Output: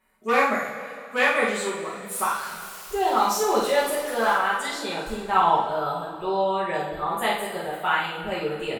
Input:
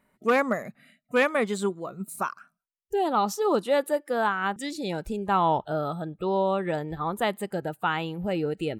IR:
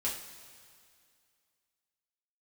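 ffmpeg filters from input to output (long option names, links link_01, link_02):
-filter_complex "[0:a]asettb=1/sr,asplit=3[link_01][link_02][link_03];[link_01]atrim=end=2.114[link_04];[link_02]atrim=start=2.11:end=4.33,asetpts=PTS-STARTPTS,afade=type=in:duration=0.004:curve=qsin,afade=type=out:start_time=2.216:duration=0.004:curve=qsin,aeval=exprs='val(0)+0.5*0.0168*sgn(val(0))':channel_layout=same[link_05];[link_03]atrim=start=4.326[link_06];[link_04][link_05]acrossfade=duration=0.004:curve1=hsin:curve2=qsin[link_07];[link_07][link_06]acrossfade=duration=0.004:curve1=qsin:curve2=hsin,equalizer=frequency=170:width=0.51:gain=-12,asplit=2[link_08][link_09];[link_09]adelay=48,volume=-6dB[link_10];[link_08][link_10]amix=inputs=2:normalize=0[link_11];[1:a]atrim=start_sample=2205,asetrate=37926,aresample=44100[link_12];[link_11][link_12]afir=irnorm=-1:irlink=0"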